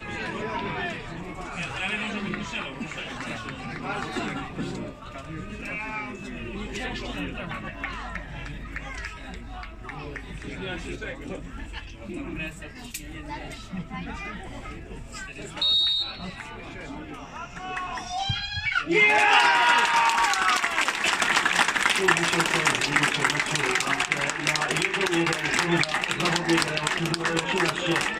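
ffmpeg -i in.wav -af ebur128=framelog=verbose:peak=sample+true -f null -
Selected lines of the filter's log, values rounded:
Integrated loudness:
  I:         -24.4 LUFS
  Threshold: -35.6 LUFS
Loudness range:
  LRA:        15.8 LU
  Threshold: -45.5 LUFS
  LRA low:   -36.1 LUFS
  LRA high:  -20.4 LUFS
Sample peak:
  Peak:       -3.9 dBFS
True peak:
  Peak:       -3.1 dBFS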